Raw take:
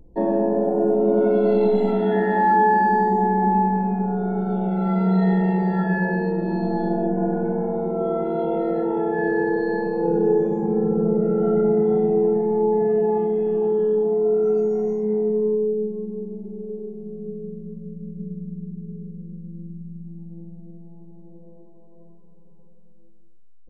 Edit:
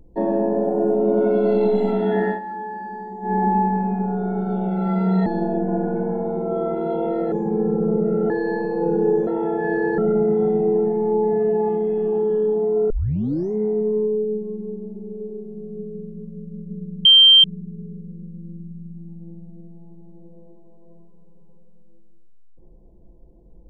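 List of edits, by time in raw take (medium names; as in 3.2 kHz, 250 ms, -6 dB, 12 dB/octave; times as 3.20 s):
2.28–3.34 s: dip -14.5 dB, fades 0.12 s
5.26–6.75 s: delete
8.81–9.52 s: swap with 10.49–11.47 s
14.39 s: tape start 0.62 s
18.54 s: add tone 3.15 kHz -7 dBFS 0.39 s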